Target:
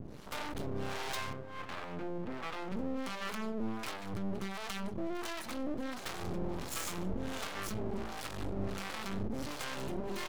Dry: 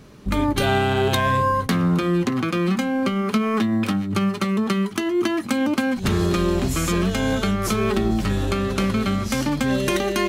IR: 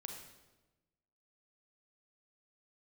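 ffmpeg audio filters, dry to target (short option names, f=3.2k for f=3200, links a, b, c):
-filter_complex "[0:a]alimiter=limit=-16.5dB:level=0:latency=1,asoftclip=type=tanh:threshold=-34dB,aecho=1:1:190:0.2,acrossover=split=500[a][b];[a]aeval=exprs='val(0)*(1-1/2+1/2*cos(2*PI*1.4*n/s))':c=same[c];[b]aeval=exprs='val(0)*(1-1/2-1/2*cos(2*PI*1.4*n/s))':c=same[d];[c][d]amix=inputs=2:normalize=0,asettb=1/sr,asplit=3[e][f][g];[e]atrim=end=1.334[h];[f]atrim=start=1.33:end=2.72,asetpts=PTS-STARTPTS,afade=t=in:d=0.004:c=qsin,afade=t=out:st=1.386:d=0.004:c=qsin,highpass=160,lowpass=2.3k[i];[g]atrim=start=2.716[j];[h][i]acrossfade=d=0.004:c1=hsin:c2=qsin[k];[k][j]acrossfade=d=0.004:c1=qsin:c2=hsin,aeval=exprs='max(val(0),0)':c=same,volume=6dB"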